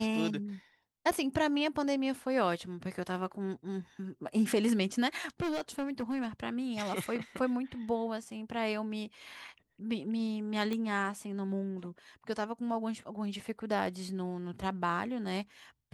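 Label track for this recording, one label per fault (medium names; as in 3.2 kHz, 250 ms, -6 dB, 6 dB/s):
1.110000	1.120000	dropout 6.4 ms
5.400000	6.260000	clipped -30 dBFS
10.730000	10.730000	pop -22 dBFS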